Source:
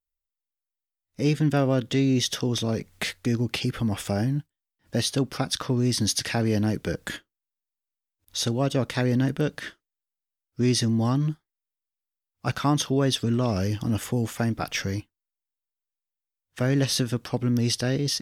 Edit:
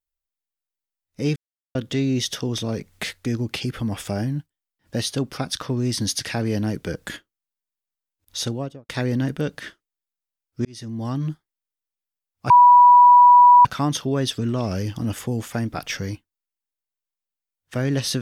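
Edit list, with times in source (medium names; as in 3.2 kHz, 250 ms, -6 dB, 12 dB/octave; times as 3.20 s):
1.36–1.75 s: mute
8.42–8.89 s: studio fade out
10.65–11.31 s: fade in
12.50 s: add tone 978 Hz -7 dBFS 1.15 s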